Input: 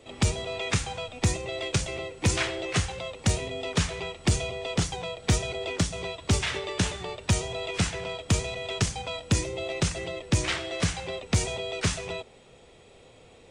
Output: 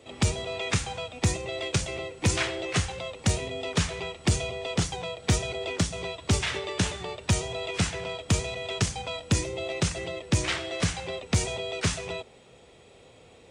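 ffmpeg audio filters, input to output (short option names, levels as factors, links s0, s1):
-af "highpass=47"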